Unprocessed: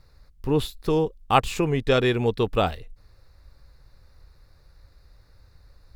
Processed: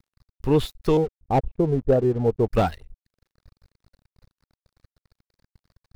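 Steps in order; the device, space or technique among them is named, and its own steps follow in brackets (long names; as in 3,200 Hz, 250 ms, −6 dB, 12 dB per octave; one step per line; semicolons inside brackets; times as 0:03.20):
reverb reduction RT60 0.54 s
0:00.97–0:02.46: Chebyshev low-pass filter 720 Hz, order 3
early transistor amplifier (dead-zone distortion −48 dBFS; slew-rate limiting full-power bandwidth 77 Hz)
level +3.5 dB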